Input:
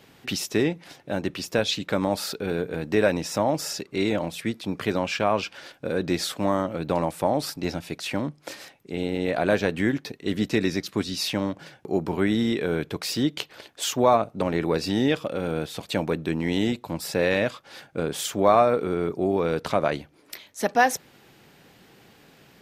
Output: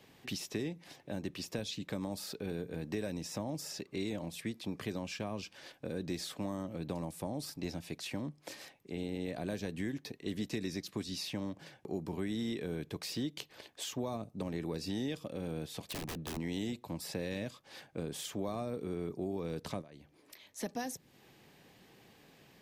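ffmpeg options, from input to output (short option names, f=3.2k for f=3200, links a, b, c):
-filter_complex "[0:a]asettb=1/sr,asplit=3[a][b][c];[a]atrim=end=15.814[d];[b]atrim=start=15.81:end=16.37,asetpts=PTS-STARTPTS,afade=t=in:d=0.004:c=qsin,afade=t=out:st=0.556:d=0.004:c=qsin,aeval=exprs='(mod(13.3*val(0)+1,2)-1)/13.3':c=same[e];[c]atrim=start=16.366[f];[d][e]acrossfade=d=0.004:c1=hsin:c2=qsin[g];[g][f]acrossfade=d=0.004:c1=qsin:c2=hsin,asettb=1/sr,asplit=3[h][i][j];[h]atrim=end=19.814[k];[i]atrim=start=19.81:end=20.45,asetpts=PTS-STARTPTS,afade=t=in:d=0.004:c=qsin,afade=t=out:st=0.636:d=0.004:c=qsin,acompressor=threshold=-45dB:ratio=2.5:attack=3.2:release=140:knee=1:detection=peak[l];[j]atrim=start=20.446[m];[k][l]acrossfade=d=0.004:c1=hsin:c2=qsin[n];[n][m]acrossfade=d=0.004:c1=qsin:c2=hsin,bandreject=f=1.4k:w=8.3,acrossover=split=320|4500[o][p][q];[o]acompressor=threshold=-29dB:ratio=4[r];[p]acompressor=threshold=-37dB:ratio=4[s];[q]acompressor=threshold=-37dB:ratio=4[t];[r][s][t]amix=inputs=3:normalize=0,volume=-7dB"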